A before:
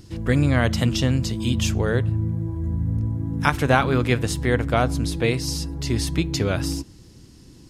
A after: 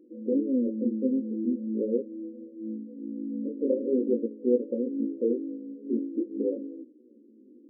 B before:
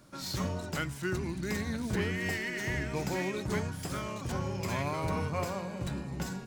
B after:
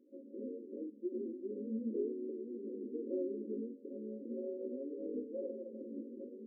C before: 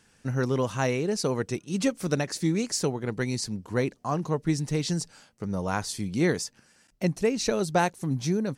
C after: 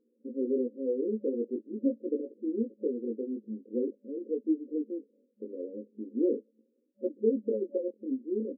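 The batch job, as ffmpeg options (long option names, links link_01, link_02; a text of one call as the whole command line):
ffmpeg -i in.wav -af "afftfilt=real='re*between(b*sr/4096,210,570)':imag='im*between(b*sr/4096,210,570)':win_size=4096:overlap=0.75,flanger=delay=16:depth=6.7:speed=0.43,volume=1dB" out.wav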